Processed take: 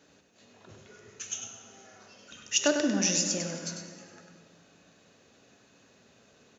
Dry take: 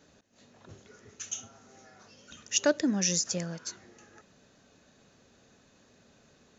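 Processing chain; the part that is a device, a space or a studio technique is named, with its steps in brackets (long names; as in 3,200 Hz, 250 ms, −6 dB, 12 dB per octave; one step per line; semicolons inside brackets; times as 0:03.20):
PA in a hall (high-pass filter 150 Hz 6 dB per octave; parametric band 2,700 Hz +3.5 dB 0.43 octaves; single-tap delay 99 ms −7 dB; convolution reverb RT60 2.1 s, pre-delay 3 ms, DRR 6 dB)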